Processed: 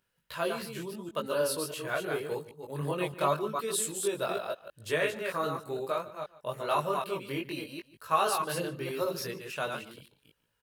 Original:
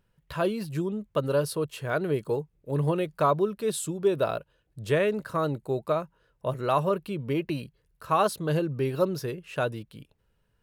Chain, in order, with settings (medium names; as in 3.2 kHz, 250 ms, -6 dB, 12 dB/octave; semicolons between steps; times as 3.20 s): chunks repeated in reverse 156 ms, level -4.5 dB; treble shelf 4.1 kHz -6.5 dB; chorus voices 2, 0.81 Hz, delay 20 ms, depth 2.7 ms; tilt EQ +3.5 dB/octave; echo from a far wall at 25 m, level -18 dB